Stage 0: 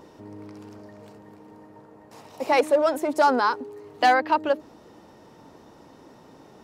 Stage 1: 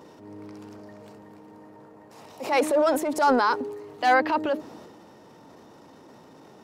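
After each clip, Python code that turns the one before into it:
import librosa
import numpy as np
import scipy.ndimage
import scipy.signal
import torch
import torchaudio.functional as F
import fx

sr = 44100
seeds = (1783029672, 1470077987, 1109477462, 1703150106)

y = scipy.signal.sosfilt(scipy.signal.butter(2, 100.0, 'highpass', fs=sr, output='sos'), x)
y = fx.transient(y, sr, attack_db=-7, sustain_db=6)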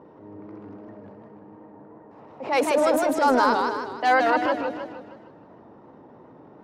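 y = fx.env_lowpass(x, sr, base_hz=1200.0, full_db=-18.5)
y = fx.echo_warbled(y, sr, ms=156, feedback_pct=48, rate_hz=2.8, cents=157, wet_db=-4.0)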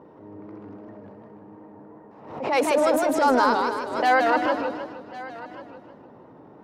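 y = x + 10.0 ** (-17.5 / 20.0) * np.pad(x, (int(1092 * sr / 1000.0), 0))[:len(x)]
y = fx.pre_swell(y, sr, db_per_s=78.0)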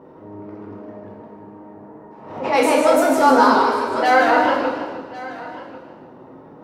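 y = fx.rev_plate(x, sr, seeds[0], rt60_s=0.77, hf_ratio=0.95, predelay_ms=0, drr_db=-1.5)
y = y * 10.0 ** (2.0 / 20.0)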